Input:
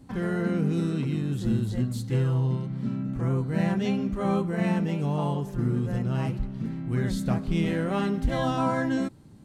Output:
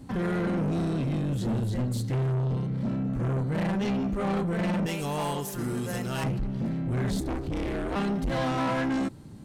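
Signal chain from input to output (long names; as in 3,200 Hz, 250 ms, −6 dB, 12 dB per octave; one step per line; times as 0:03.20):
0:04.86–0:06.24: RIAA equalisation recording
in parallel at −2 dB: speech leveller within 3 dB 2 s
on the sum: soft clipping −24.5 dBFS, distortion −8 dB
0:07.20–0:07.96: ring modulation 130 Hz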